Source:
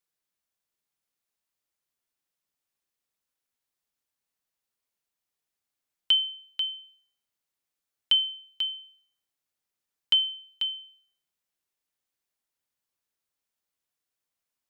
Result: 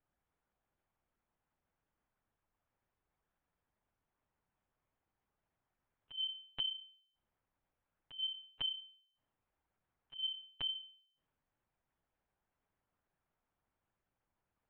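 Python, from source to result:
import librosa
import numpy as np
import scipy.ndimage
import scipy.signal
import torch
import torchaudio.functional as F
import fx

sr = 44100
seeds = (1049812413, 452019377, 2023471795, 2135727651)

y = scipy.signal.sosfilt(scipy.signal.butter(2, 1300.0, 'lowpass', fs=sr, output='sos'), x)
y = fx.over_compress(y, sr, threshold_db=-44.0, ratio=-0.5)
y = fx.lpc_monotone(y, sr, seeds[0], pitch_hz=140.0, order=8)
y = y * 10.0 ** (6.0 / 20.0)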